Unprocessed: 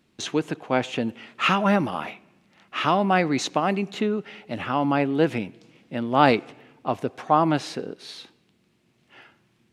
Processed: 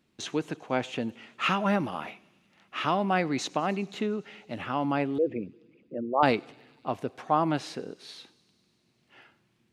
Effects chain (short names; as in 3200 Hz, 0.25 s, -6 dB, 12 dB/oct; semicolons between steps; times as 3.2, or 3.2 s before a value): 5.18–6.23 formant sharpening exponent 3; thin delay 99 ms, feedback 81%, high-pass 4300 Hz, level -21.5 dB; gain -5.5 dB